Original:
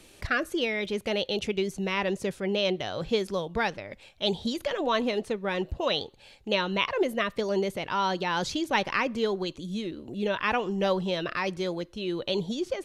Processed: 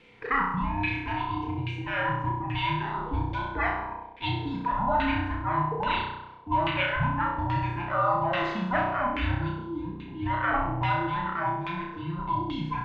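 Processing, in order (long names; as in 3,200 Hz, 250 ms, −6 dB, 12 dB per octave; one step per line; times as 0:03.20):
frequency inversion band by band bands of 500 Hz
flutter between parallel walls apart 5.6 metres, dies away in 0.97 s
auto-filter low-pass saw down 1.2 Hz 820–2,600 Hz
level −5 dB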